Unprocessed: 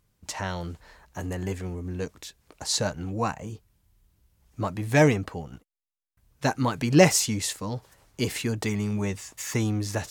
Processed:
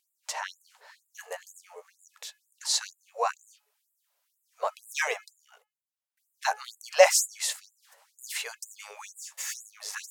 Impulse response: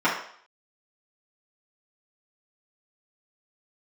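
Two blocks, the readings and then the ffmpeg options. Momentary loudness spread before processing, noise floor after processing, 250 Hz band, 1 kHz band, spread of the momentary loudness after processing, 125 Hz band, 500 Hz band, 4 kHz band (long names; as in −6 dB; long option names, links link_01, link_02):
19 LU, −81 dBFS, below −40 dB, −0.5 dB, 22 LU, below −40 dB, −2.0 dB, −1.0 dB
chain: -af "lowshelf=frequency=380:width_type=q:width=1.5:gain=-11.5,bandreject=frequency=425:width_type=h:width=4,bandreject=frequency=850:width_type=h:width=4,bandreject=frequency=1275:width_type=h:width=4,bandreject=frequency=1700:width_type=h:width=4,bandreject=frequency=2125:width_type=h:width=4,bandreject=frequency=2550:width_type=h:width=4,bandreject=frequency=2975:width_type=h:width=4,afftfilt=real='re*gte(b*sr/1024,410*pow(7100/410,0.5+0.5*sin(2*PI*2.1*pts/sr)))':imag='im*gte(b*sr/1024,410*pow(7100/410,0.5+0.5*sin(2*PI*2.1*pts/sr)))':win_size=1024:overlap=0.75"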